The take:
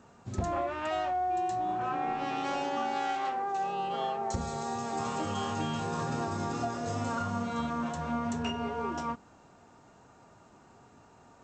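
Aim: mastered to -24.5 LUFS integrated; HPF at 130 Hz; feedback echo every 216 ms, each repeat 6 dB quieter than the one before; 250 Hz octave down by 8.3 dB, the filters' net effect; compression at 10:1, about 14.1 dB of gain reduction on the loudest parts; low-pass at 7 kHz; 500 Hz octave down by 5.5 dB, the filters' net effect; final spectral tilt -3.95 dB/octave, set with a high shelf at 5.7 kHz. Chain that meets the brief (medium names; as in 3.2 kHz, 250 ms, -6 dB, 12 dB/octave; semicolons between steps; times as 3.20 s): high-pass 130 Hz; low-pass 7 kHz; peaking EQ 250 Hz -8 dB; peaking EQ 500 Hz -6 dB; treble shelf 5.7 kHz +3 dB; compression 10:1, threshold -46 dBFS; feedback delay 216 ms, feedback 50%, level -6 dB; trim +23 dB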